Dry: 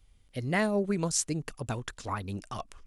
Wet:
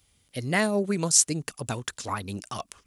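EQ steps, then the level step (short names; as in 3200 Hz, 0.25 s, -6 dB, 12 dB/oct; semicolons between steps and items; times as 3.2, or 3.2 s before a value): HPF 96 Hz 12 dB/oct; high shelf 3700 Hz +9.5 dB; +2.5 dB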